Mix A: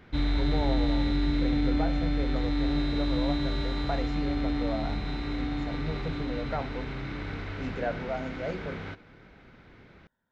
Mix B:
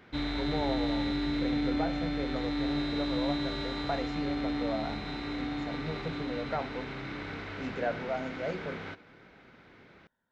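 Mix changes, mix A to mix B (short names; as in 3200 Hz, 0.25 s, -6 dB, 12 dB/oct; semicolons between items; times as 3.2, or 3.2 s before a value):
background: add low shelf 71 Hz -11 dB; master: add low shelf 170 Hz -5.5 dB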